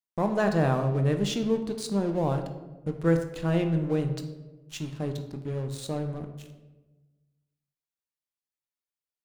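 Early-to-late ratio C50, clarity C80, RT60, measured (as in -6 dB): 9.0 dB, 11.0 dB, 1.2 s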